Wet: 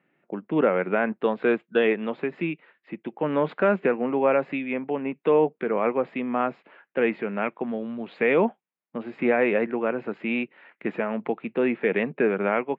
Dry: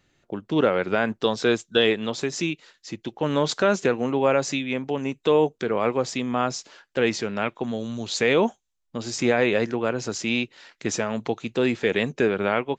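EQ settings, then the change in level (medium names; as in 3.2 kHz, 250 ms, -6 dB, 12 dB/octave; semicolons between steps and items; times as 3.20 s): elliptic band-pass 170–2400 Hz, stop band 40 dB; distance through air 56 m; 0.0 dB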